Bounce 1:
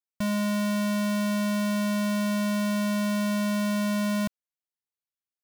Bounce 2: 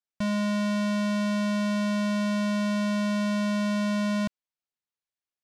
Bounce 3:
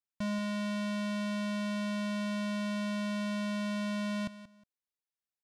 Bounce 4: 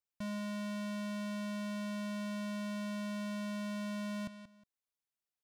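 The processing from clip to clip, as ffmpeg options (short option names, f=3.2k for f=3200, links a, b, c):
-af "lowpass=6.4k"
-af "aecho=1:1:181|362:0.188|0.0396,volume=-6.5dB"
-af "asoftclip=type=tanh:threshold=-35dB,volume=-2dB"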